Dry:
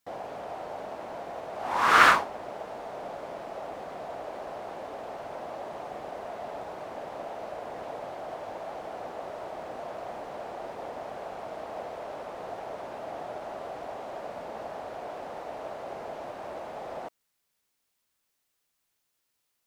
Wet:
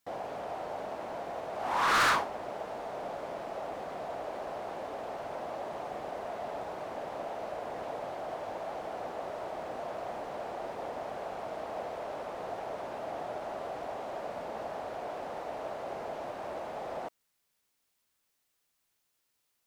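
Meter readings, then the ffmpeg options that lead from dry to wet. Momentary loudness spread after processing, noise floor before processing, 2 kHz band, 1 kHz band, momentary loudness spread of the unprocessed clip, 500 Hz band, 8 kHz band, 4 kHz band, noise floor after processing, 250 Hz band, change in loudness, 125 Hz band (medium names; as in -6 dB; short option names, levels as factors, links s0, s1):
2 LU, -78 dBFS, -6.5 dB, -4.0 dB, 2 LU, -0.5 dB, -1.5 dB, -3.0 dB, -78 dBFS, -1.5 dB, -4.0 dB, -1.0 dB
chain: -af "asoftclip=type=tanh:threshold=0.0794"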